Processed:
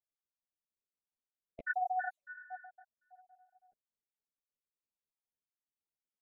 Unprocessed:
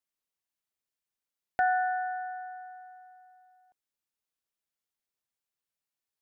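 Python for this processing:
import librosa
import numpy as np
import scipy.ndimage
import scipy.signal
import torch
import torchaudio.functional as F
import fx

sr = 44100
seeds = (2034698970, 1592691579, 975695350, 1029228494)

y = fx.spec_dropout(x, sr, seeds[0], share_pct=47)
y = fx.high_shelf(y, sr, hz=2000.0, db=9.0)
y = fx.env_lowpass(y, sr, base_hz=640.0, full_db=-31.0)
y = fx.ensemble(y, sr)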